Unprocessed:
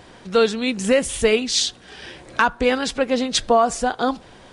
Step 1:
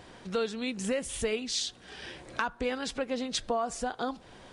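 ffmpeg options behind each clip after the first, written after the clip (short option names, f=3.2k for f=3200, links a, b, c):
-af "acompressor=threshold=-28dB:ratio=2,volume=-5.5dB"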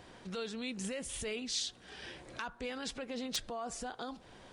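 -filter_complex "[0:a]acrossover=split=2300[a][b];[a]alimiter=level_in=5dB:limit=-24dB:level=0:latency=1:release=19,volume=-5dB[c];[b]aeval=exprs='(mod(9.44*val(0)+1,2)-1)/9.44':c=same[d];[c][d]amix=inputs=2:normalize=0,volume=-4dB"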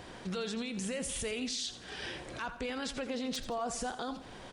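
-af "alimiter=level_in=10.5dB:limit=-24dB:level=0:latency=1:release=51,volume=-10.5dB,aecho=1:1:85|170|255|340:0.224|0.0895|0.0358|0.0143,volume=6.5dB"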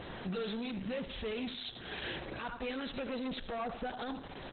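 -af "asoftclip=type=tanh:threshold=-38dB,volume=5.5dB" -ar 48000 -c:a libopus -b:a 8k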